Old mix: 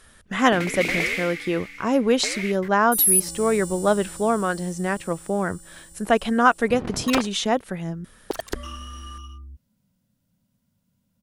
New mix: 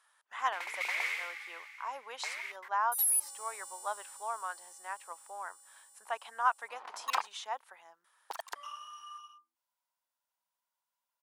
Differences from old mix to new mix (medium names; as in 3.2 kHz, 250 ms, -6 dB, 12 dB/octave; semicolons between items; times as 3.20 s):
speech -7.0 dB; master: add ladder high-pass 820 Hz, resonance 60%